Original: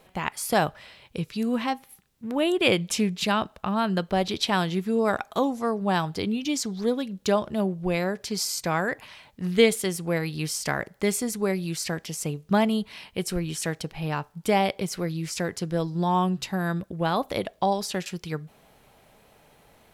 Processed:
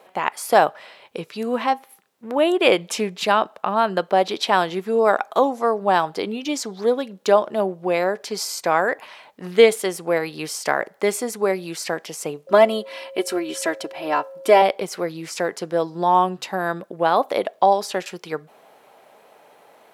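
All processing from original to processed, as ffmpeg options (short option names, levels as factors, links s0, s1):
-filter_complex "[0:a]asettb=1/sr,asplit=3[s0][s1][s2];[s0]atrim=end=12.474[s3];[s1]atrim=start=12.47:end=14.62,asetpts=PTS-STARTPTS,afade=t=in:d=0.004:c=qsin,afade=t=out:st=2.146:d=0.004:c=qsin,aecho=1:1:3:0.79,atrim=end_sample=94815,aeval=exprs='val(0)+0.00631*sin(2*PI*540*n/s)':c=same[s4];[s2]atrim=start=14.616[s5];[s3][s4]acrossfade=d=0.004:c1=hsin:c2=qsin[s6];[s6][s5]acrossfade=d=0.004:c1=qsin:c2=hsin,highpass=540,tiltshelf=f=1400:g=6.5,volume=2.11"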